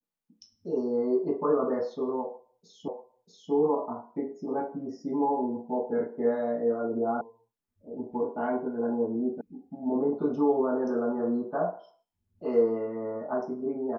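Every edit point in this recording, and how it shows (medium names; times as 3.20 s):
2.88 s: repeat of the last 0.64 s
7.21 s: sound stops dead
9.41 s: sound stops dead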